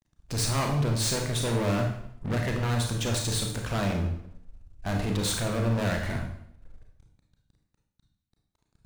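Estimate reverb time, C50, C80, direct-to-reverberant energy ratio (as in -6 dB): 0.70 s, 4.5 dB, 8.0 dB, 1.5 dB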